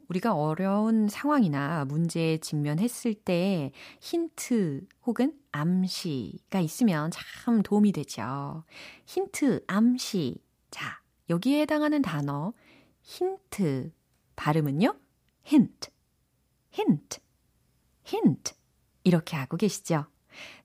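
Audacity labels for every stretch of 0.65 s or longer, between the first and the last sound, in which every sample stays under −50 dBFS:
15.890000	16.730000	silence
17.180000	18.060000	silence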